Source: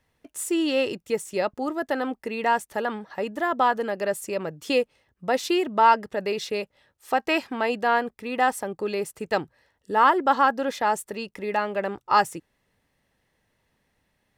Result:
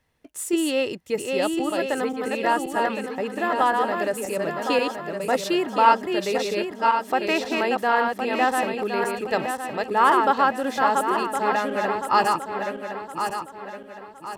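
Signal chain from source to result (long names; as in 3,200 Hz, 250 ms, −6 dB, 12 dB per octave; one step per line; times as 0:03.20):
feedback delay that plays each chunk backwards 532 ms, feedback 62%, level −3.5 dB
0:10.61–0:11.07: surface crackle 130 per second −39 dBFS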